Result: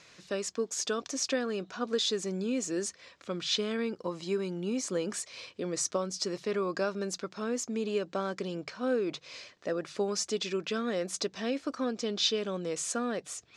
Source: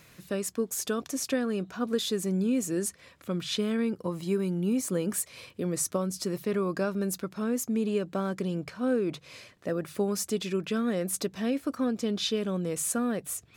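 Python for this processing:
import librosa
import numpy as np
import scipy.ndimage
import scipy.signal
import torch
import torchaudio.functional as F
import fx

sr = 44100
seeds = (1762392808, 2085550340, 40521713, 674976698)

y = scipy.signal.sosfilt(scipy.signal.butter(4, 6200.0, 'lowpass', fs=sr, output='sos'), x)
y = fx.bass_treble(y, sr, bass_db=-11, treble_db=7)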